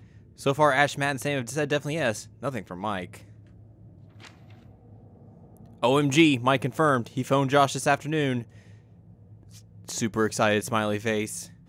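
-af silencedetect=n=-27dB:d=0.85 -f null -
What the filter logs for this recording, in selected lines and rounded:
silence_start: 3.04
silence_end: 5.83 | silence_duration: 2.79
silence_start: 8.40
silence_end: 9.89 | silence_duration: 1.49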